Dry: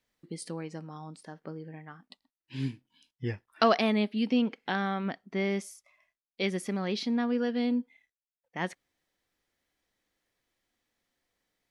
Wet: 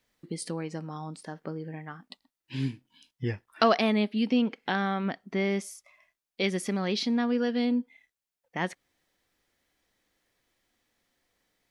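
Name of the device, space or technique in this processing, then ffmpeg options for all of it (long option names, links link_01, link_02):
parallel compression: -filter_complex "[0:a]asettb=1/sr,asplit=3[link_01][link_02][link_03];[link_01]atrim=end=6.444[link_04];[link_02]atrim=start=6.44:end=7.65,asetpts=PTS-STARTPTS,afade=type=in:duration=0.004:curve=qsin,afade=type=out:start_time=1.206:duration=0.004:curve=qsin,equalizer=frequency=5700:width=0.55:gain=3[link_05];[link_03]atrim=start=7.646[link_06];[link_04][link_05]acrossfade=duration=0.004:curve1=hsin:curve2=qsin[link_07];[link_07][link_06]acrossfade=duration=0.004:curve1=qsin:curve2=hsin,asplit=2[link_08][link_09];[link_09]acompressor=threshold=-38dB:ratio=6,volume=-1dB[link_10];[link_08][link_10]amix=inputs=2:normalize=0"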